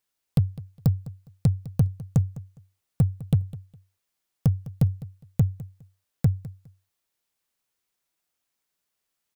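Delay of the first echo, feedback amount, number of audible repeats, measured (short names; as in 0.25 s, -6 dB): 0.205 s, 21%, 2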